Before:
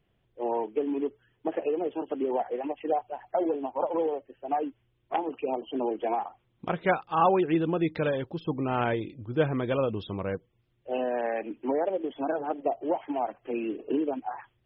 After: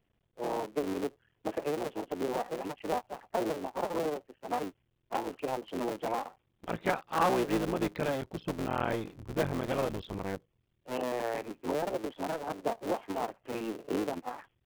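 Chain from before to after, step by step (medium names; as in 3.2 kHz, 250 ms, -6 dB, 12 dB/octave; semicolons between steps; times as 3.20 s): cycle switcher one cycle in 3, muted; trim -3 dB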